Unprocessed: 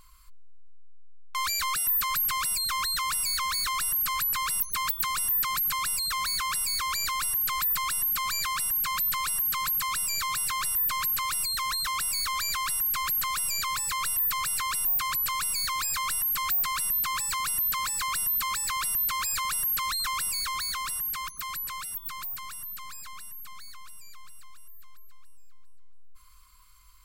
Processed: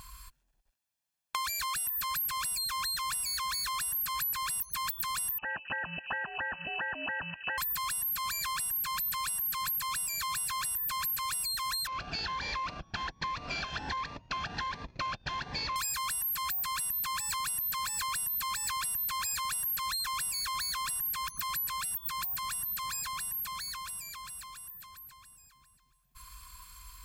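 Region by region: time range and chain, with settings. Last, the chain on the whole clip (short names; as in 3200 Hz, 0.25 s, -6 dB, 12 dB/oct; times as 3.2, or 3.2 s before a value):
5.38–7.58 inverted band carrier 2800 Hz + ring modulator 170 Hz
11.87–15.76 CVSD 32 kbps + LPF 2800 Hz 6 dB/oct + cascading phaser rising 1.3 Hz
whole clip: HPF 41 Hz; comb 1.2 ms, depth 44%; compressor, threshold -41 dBFS; gain +8 dB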